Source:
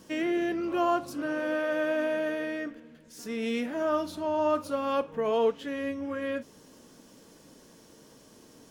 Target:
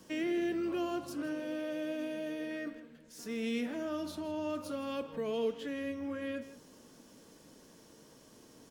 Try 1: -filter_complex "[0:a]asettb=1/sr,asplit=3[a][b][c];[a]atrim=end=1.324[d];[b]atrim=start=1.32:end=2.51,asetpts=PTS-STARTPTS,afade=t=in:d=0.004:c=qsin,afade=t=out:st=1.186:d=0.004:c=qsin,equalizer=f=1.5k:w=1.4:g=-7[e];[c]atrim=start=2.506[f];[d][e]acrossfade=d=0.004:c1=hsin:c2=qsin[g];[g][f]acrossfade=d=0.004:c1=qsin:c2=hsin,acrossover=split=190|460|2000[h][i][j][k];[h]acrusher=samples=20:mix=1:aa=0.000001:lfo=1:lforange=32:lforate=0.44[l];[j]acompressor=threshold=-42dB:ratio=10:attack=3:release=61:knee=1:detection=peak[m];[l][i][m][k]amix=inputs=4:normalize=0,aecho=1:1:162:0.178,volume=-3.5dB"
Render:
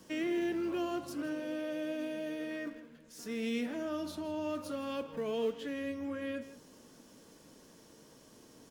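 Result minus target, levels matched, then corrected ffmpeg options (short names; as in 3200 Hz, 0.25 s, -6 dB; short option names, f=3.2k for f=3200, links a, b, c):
decimation with a swept rate: distortion +11 dB
-filter_complex "[0:a]asettb=1/sr,asplit=3[a][b][c];[a]atrim=end=1.324[d];[b]atrim=start=1.32:end=2.51,asetpts=PTS-STARTPTS,afade=t=in:d=0.004:c=qsin,afade=t=out:st=1.186:d=0.004:c=qsin,equalizer=f=1.5k:w=1.4:g=-7[e];[c]atrim=start=2.506[f];[d][e]acrossfade=d=0.004:c1=hsin:c2=qsin[g];[g][f]acrossfade=d=0.004:c1=qsin:c2=hsin,acrossover=split=190|460|2000[h][i][j][k];[h]acrusher=samples=6:mix=1:aa=0.000001:lfo=1:lforange=9.6:lforate=0.44[l];[j]acompressor=threshold=-42dB:ratio=10:attack=3:release=61:knee=1:detection=peak[m];[l][i][m][k]amix=inputs=4:normalize=0,aecho=1:1:162:0.178,volume=-3.5dB"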